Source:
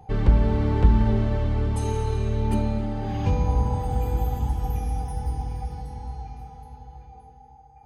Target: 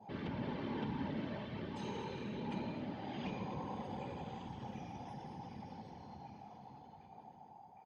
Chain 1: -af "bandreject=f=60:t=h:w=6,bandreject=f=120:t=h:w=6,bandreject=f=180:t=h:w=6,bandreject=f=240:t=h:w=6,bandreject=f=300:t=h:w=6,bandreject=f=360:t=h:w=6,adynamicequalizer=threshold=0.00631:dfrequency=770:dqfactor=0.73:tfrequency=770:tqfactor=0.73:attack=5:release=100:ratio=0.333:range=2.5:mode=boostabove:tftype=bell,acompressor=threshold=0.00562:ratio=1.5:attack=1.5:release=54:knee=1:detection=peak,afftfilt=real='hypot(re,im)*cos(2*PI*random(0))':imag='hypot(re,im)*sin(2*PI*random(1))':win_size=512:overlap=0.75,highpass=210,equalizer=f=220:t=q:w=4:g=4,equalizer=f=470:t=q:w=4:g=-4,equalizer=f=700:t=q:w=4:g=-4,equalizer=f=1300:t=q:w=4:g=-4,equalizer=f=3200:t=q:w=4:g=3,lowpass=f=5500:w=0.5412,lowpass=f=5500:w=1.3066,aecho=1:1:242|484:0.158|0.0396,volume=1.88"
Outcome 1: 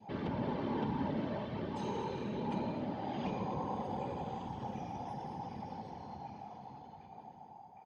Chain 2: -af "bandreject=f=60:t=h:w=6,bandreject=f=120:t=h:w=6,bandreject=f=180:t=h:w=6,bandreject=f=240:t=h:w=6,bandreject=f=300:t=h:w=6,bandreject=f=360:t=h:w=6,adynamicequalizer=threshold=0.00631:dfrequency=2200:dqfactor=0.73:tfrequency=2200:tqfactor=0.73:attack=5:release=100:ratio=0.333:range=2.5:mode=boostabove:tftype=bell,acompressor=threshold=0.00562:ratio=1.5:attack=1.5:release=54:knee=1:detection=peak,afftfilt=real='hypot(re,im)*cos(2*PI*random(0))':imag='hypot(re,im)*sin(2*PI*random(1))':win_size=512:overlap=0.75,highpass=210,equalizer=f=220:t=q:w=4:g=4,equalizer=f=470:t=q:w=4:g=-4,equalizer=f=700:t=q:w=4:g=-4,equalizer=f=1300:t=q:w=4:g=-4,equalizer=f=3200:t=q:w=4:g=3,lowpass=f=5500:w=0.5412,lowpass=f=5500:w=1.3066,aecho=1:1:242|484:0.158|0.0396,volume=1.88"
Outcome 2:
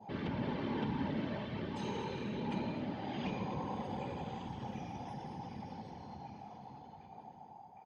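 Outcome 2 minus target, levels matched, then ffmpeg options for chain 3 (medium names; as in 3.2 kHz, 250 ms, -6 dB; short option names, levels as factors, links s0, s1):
compression: peak gain reduction -3.5 dB
-af "bandreject=f=60:t=h:w=6,bandreject=f=120:t=h:w=6,bandreject=f=180:t=h:w=6,bandreject=f=240:t=h:w=6,bandreject=f=300:t=h:w=6,bandreject=f=360:t=h:w=6,adynamicequalizer=threshold=0.00631:dfrequency=2200:dqfactor=0.73:tfrequency=2200:tqfactor=0.73:attack=5:release=100:ratio=0.333:range=2.5:mode=boostabove:tftype=bell,acompressor=threshold=0.00168:ratio=1.5:attack=1.5:release=54:knee=1:detection=peak,afftfilt=real='hypot(re,im)*cos(2*PI*random(0))':imag='hypot(re,im)*sin(2*PI*random(1))':win_size=512:overlap=0.75,highpass=210,equalizer=f=220:t=q:w=4:g=4,equalizer=f=470:t=q:w=4:g=-4,equalizer=f=700:t=q:w=4:g=-4,equalizer=f=1300:t=q:w=4:g=-4,equalizer=f=3200:t=q:w=4:g=3,lowpass=f=5500:w=0.5412,lowpass=f=5500:w=1.3066,aecho=1:1:242|484:0.158|0.0396,volume=1.88"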